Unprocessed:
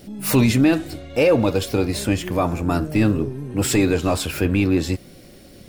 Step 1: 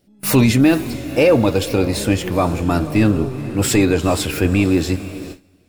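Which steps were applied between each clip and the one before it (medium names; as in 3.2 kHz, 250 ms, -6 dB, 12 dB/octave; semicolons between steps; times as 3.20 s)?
echo that smears into a reverb 473 ms, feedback 51%, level -15 dB; gate with hold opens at -24 dBFS; trim +3 dB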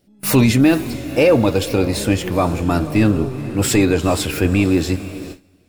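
no audible change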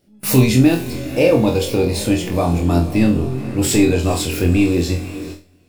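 on a send: flutter echo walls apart 4 m, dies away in 0.3 s; on the sum: dynamic bell 1.4 kHz, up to -7 dB, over -35 dBFS, Q 1.2; trim -1 dB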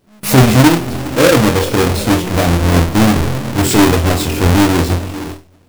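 square wave that keeps the level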